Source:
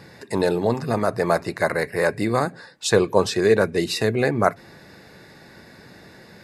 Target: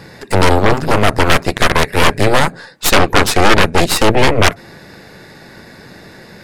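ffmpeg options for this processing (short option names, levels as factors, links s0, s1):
-af "aeval=exprs='0.891*(cos(1*acos(clip(val(0)/0.891,-1,1)))-cos(1*PI/2))+0.398*(cos(8*acos(clip(val(0)/0.891,-1,1)))-cos(8*PI/2))':c=same,aeval=exprs='1.33*sin(PI/2*2.51*val(0)/1.33)':c=same,volume=0.668"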